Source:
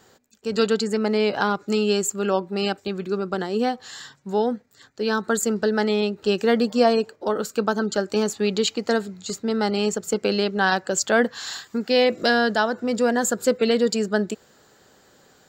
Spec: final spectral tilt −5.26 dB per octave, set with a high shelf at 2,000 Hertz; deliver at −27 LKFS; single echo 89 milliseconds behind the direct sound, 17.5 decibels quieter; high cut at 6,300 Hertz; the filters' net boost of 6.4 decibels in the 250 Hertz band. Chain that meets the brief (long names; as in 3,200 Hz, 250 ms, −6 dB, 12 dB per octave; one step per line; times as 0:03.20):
low-pass filter 6,300 Hz
parametric band 250 Hz +7.5 dB
high-shelf EQ 2,000 Hz −5 dB
single-tap delay 89 ms −17.5 dB
level −7 dB